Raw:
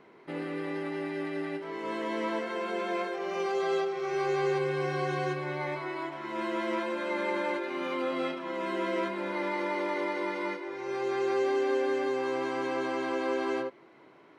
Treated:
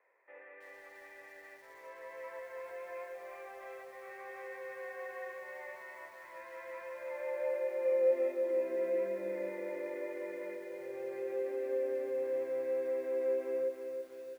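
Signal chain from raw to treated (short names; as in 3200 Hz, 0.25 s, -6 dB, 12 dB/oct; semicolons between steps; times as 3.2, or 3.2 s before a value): vocal tract filter e; high-pass sweep 1000 Hz -> 83 Hz, 6.9–10.42; outdoor echo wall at 57 m, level -27 dB; lo-fi delay 0.324 s, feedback 55%, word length 10-bit, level -6.5 dB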